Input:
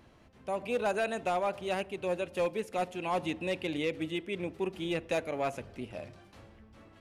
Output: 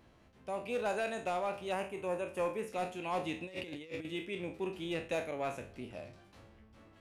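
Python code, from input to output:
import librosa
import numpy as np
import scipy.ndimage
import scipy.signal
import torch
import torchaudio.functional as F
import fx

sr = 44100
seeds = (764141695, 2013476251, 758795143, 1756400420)

y = fx.spec_trails(x, sr, decay_s=0.35)
y = fx.graphic_eq_15(y, sr, hz=(1000, 4000, 10000), db=(6, -11, 3), at=(1.72, 2.69))
y = fx.over_compress(y, sr, threshold_db=-37.0, ratio=-0.5, at=(3.43, 4.05))
y = fx.peak_eq(y, sr, hz=4900.0, db=-7.5, octaves=0.2, at=(5.01, 5.74))
y = y * 10.0 ** (-5.0 / 20.0)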